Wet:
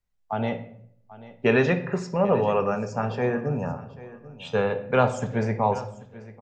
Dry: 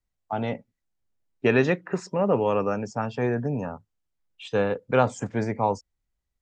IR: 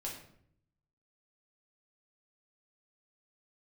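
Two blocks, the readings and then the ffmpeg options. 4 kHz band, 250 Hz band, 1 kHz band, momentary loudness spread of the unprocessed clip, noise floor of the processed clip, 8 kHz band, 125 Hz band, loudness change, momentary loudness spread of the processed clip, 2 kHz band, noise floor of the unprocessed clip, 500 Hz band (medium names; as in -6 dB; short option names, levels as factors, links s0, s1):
+1.0 dB, +0.5 dB, +1.5 dB, 11 LU, -62 dBFS, no reading, +2.0 dB, +1.0 dB, 19 LU, +1.5 dB, -81 dBFS, +1.0 dB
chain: -filter_complex "[0:a]equalizer=f=310:w=7:g=-14.5,aecho=1:1:789|1578:0.126|0.0315,asplit=2[s0][s1];[1:a]atrim=start_sample=2205,lowpass=6600[s2];[s1][s2]afir=irnorm=-1:irlink=0,volume=0.75[s3];[s0][s3]amix=inputs=2:normalize=0,volume=0.794"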